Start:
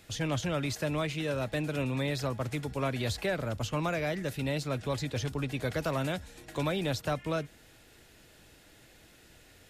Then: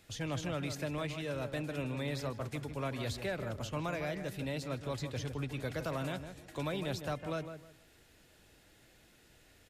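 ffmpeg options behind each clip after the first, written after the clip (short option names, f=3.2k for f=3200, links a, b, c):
-filter_complex "[0:a]asplit=2[a][b];[b]adelay=156,lowpass=f=1.6k:p=1,volume=-8dB,asplit=2[c][d];[d]adelay=156,lowpass=f=1.6k:p=1,volume=0.26,asplit=2[e][f];[f]adelay=156,lowpass=f=1.6k:p=1,volume=0.26[g];[a][c][e][g]amix=inputs=4:normalize=0,volume=-6dB"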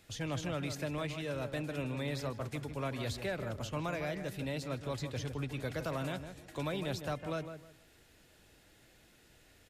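-af anull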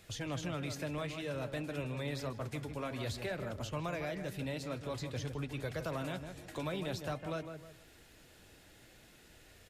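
-filter_complex "[0:a]asplit=2[a][b];[b]acompressor=threshold=-46dB:ratio=6,volume=3dB[c];[a][c]amix=inputs=2:normalize=0,flanger=delay=1.7:depth=9.4:regen=-69:speed=0.52:shape=sinusoidal"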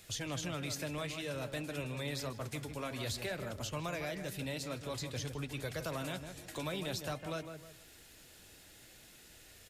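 -af "highshelf=f=3.3k:g=9.5,volume=-1.5dB"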